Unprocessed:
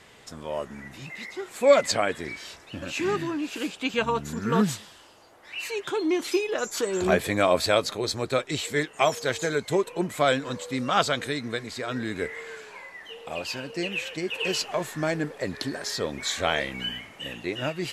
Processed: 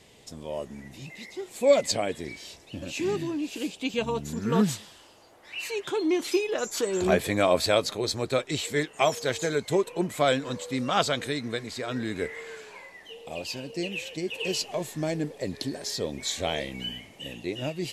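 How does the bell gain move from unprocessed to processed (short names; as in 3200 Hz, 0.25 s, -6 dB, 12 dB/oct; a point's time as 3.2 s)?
bell 1400 Hz 1.1 oct
4.09 s -13.5 dB
4.67 s -4 dB
12.71 s -4 dB
13.19 s -14 dB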